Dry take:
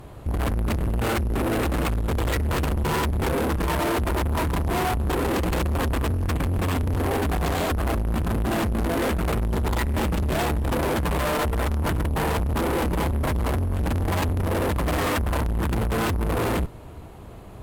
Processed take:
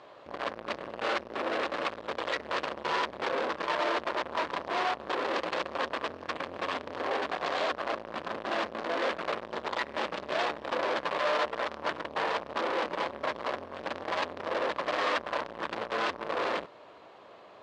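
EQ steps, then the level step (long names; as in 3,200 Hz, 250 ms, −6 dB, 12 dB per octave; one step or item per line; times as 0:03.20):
loudspeaker in its box 440–4,600 Hz, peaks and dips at 570 Hz +7 dB, 1,100 Hz +5 dB, 1,700 Hz +3 dB
high-shelf EQ 3,400 Hz +9.5 dB
−6.5 dB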